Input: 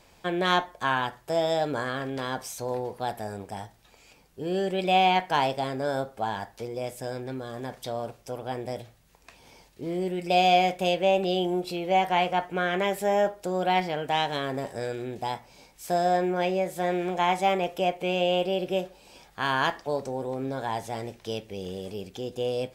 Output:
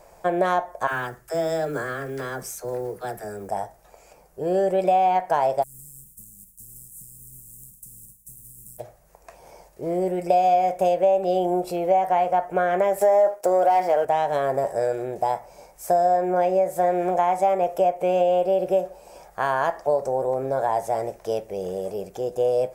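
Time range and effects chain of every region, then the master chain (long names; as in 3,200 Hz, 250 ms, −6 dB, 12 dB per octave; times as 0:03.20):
0:00.87–0:03.49: flat-topped bell 740 Hz −13 dB 1.2 octaves + all-pass dispersion lows, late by 56 ms, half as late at 400 Hz + noise that follows the level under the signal 29 dB
0:05.62–0:08.78: compressing power law on the bin magnitudes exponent 0.37 + downward compressor 5 to 1, threshold −38 dBFS + elliptic band-stop filter 190–8,200 Hz, stop band 60 dB
0:13.01–0:14.05: high-pass filter 320 Hz + leveller curve on the samples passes 2
whole clip: graphic EQ with 15 bands 100 Hz −10 dB, 250 Hz −11 dB, 630 Hz +9 dB, 4,000 Hz −4 dB; downward compressor 4 to 1, threshold −23 dBFS; parametric band 3,200 Hz −13 dB 1.3 octaves; level +6.5 dB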